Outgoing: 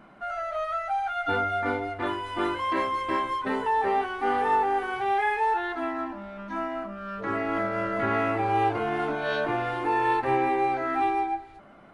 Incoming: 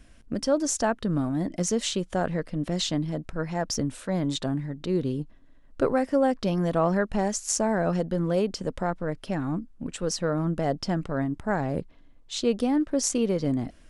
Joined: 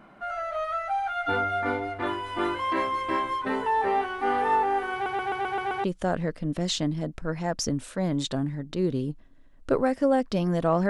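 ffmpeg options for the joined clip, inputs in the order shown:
ffmpeg -i cue0.wav -i cue1.wav -filter_complex "[0:a]apad=whole_dur=10.89,atrim=end=10.89,asplit=7[link_01][link_02][link_03][link_04][link_05][link_06][link_07];[link_01]atrim=end=5.062[link_08];[link_02]atrim=start=4.928:end=5.062[link_09];[link_03]atrim=start=4.928:end=5.062[link_10];[link_04]atrim=start=4.928:end=5.062[link_11];[link_05]atrim=start=4.928:end=5.062[link_12];[link_06]atrim=start=4.928:end=5.062[link_13];[link_07]atrim=start=4.928:end=5.062[link_14];[1:a]atrim=start=1.948:end=7[link_15];[link_08][link_09]acrossfade=duration=0.004:curve1=hsin:curve2=hsin[link_16];[link_16][link_10]acrossfade=duration=0.004:curve1=hsin:curve2=hsin[link_17];[link_17][link_11]acrossfade=duration=0.004:curve1=hsin:curve2=hsin[link_18];[link_18][link_12]acrossfade=duration=0.004:curve1=hsin:curve2=hsin[link_19];[link_19][link_13]acrossfade=duration=0.004:curve1=hsin:curve2=hsin[link_20];[link_20][link_14]acrossfade=duration=0.004:curve1=hsin:curve2=hsin[link_21];[link_21][link_15]acrossfade=duration=0.004:curve1=hsin:curve2=hsin" out.wav

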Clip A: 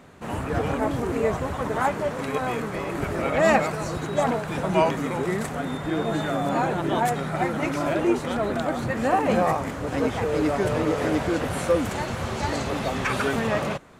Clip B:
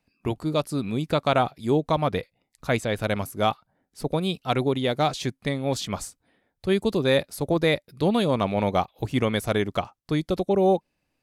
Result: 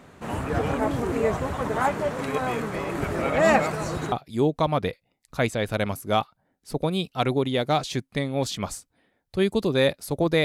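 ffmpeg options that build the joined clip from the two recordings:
ffmpeg -i cue0.wav -i cue1.wav -filter_complex "[0:a]apad=whole_dur=10.44,atrim=end=10.44,atrim=end=4.122[link_01];[1:a]atrim=start=1.418:end=7.74[link_02];[link_01][link_02]acrossfade=duration=0.004:curve1=hsin:curve2=hsin" out.wav

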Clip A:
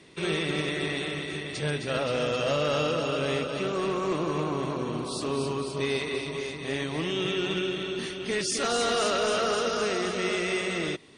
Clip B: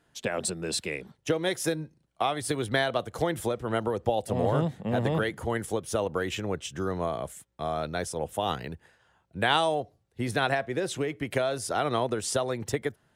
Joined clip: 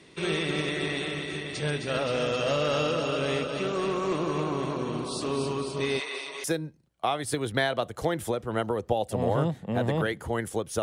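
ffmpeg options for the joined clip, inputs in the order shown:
ffmpeg -i cue0.wav -i cue1.wav -filter_complex "[0:a]asettb=1/sr,asplit=3[link_01][link_02][link_03];[link_01]atrim=end=6.004[link_04];[link_02]atrim=start=6:end=6.44,asetpts=PTS-STARTPTS,afade=type=in:duration=0.004:curve=qsin,afade=type=out:start_time=0.436:duration=0.004:curve=qsin,highpass=660[link_05];[link_03]atrim=start=6.436[link_06];[link_04][link_05]acrossfade=duration=0.004:curve1=hsin:curve2=qsin[link_07];[link_07][link_06]acrossfade=duration=0.004:curve1=qsin:curve2=hsin,apad=whole_dur=10.82,atrim=end=10.82,atrim=end=6.442[link_08];[1:a]atrim=start=1.608:end=5.99[link_09];[link_08][link_09]acrossfade=duration=0.004:curve1=hsin:curve2=hsin" out.wav

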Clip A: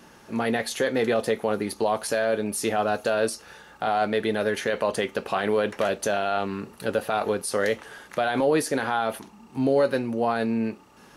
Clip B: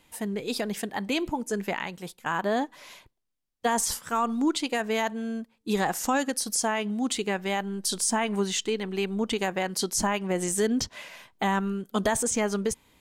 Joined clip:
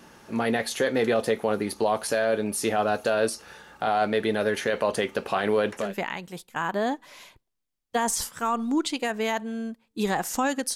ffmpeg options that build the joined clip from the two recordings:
ffmpeg -i cue0.wav -i cue1.wav -filter_complex "[0:a]apad=whole_dur=10.75,atrim=end=10.75,atrim=end=5.96,asetpts=PTS-STARTPTS[link_01];[1:a]atrim=start=1.4:end=6.45,asetpts=PTS-STARTPTS[link_02];[link_01][link_02]acrossfade=duration=0.26:curve1=tri:curve2=tri" out.wav

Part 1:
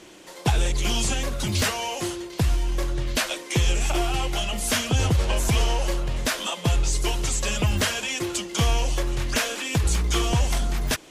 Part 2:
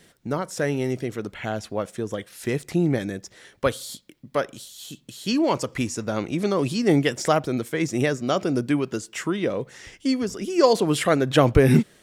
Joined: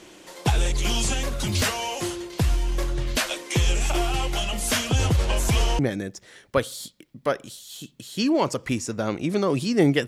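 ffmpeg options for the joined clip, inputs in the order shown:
ffmpeg -i cue0.wav -i cue1.wav -filter_complex "[0:a]apad=whole_dur=10.07,atrim=end=10.07,atrim=end=5.792[link_01];[1:a]atrim=start=2.878:end=7.16[link_02];[link_01][link_02]acrossfade=duration=0.004:curve1=hsin:curve2=hsin" out.wav

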